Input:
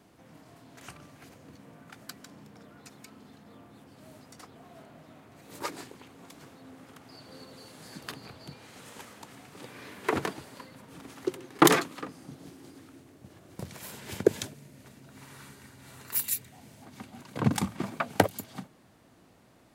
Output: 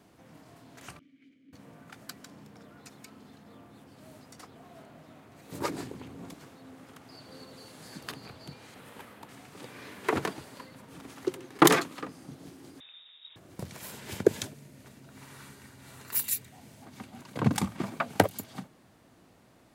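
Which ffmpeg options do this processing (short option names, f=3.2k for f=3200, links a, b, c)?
-filter_complex "[0:a]asettb=1/sr,asplit=3[a][b][c];[a]atrim=end=0.994[d];[b]atrim=start=0.99:end=1.53,asetpts=PTS-STARTPTS,afade=t=in:d=0.004:c=qsin,afade=t=out:st=0.536:d=0.004:c=qsin,asplit=3[e][f][g];[e]bandpass=f=270:t=q:w=8,volume=0dB[h];[f]bandpass=f=2.29k:t=q:w=8,volume=-6dB[i];[g]bandpass=f=3.01k:t=q:w=8,volume=-9dB[j];[h][i][j]amix=inputs=3:normalize=0[k];[c]atrim=start=1.526[l];[d][k]acrossfade=d=0.004:c1=hsin:c2=qsin[m];[m][l]acrossfade=d=0.004:c1=qsin:c2=hsin,asettb=1/sr,asplit=3[n][o][p];[n]atrim=end=5.524[q];[o]atrim=start=5.52:end=6.34,asetpts=PTS-STARTPTS,afade=t=in:d=0.004:c=qsin,afade=t=out:st=0.816:d=0.004:c=qsin,lowshelf=f=450:g=11[r];[p]atrim=start=6.336[s];[q][r]acrossfade=d=0.004:c1=hsin:c2=qsin[t];[t][s]acrossfade=d=0.004:c1=qsin:c2=hsin,asettb=1/sr,asplit=3[u][v][w];[u]atrim=end=8.744[x];[v]atrim=start=8.74:end=9.29,asetpts=PTS-STARTPTS,afade=t=in:d=0.004:c=qsin,afade=t=out:st=0.546:d=0.004:c=qsin,equalizer=f=6.5k:w=0.99:g=-11[y];[w]atrim=start=9.286[z];[x][y]acrossfade=d=0.004:c1=hsin:c2=qsin[aa];[aa][z]acrossfade=d=0.004:c1=qsin:c2=hsin,asettb=1/sr,asplit=3[ab][ac][ad];[ab]atrim=end=12.804[ae];[ac]atrim=start=12.8:end=13.36,asetpts=PTS-STARTPTS,afade=t=in:d=0.004:c=qsin,afade=t=out:st=0.556:d=0.004:c=qsin,lowpass=f=3.3k:t=q:w=0.5098,lowpass=f=3.3k:t=q:w=0.6013,lowpass=f=3.3k:t=q:w=0.9,lowpass=f=3.3k:t=q:w=2.563,afreqshift=-3900[af];[ad]atrim=start=13.356[ag];[ae][af]acrossfade=d=0.004:c1=hsin:c2=qsin[ah];[ah][ag]acrossfade=d=0.004:c1=qsin:c2=hsin"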